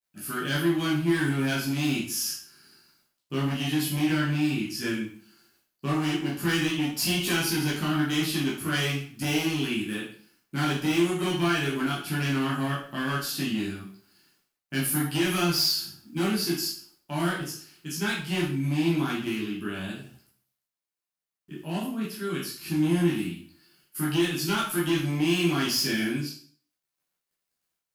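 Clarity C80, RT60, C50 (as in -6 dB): 9.0 dB, 0.45 s, 4.5 dB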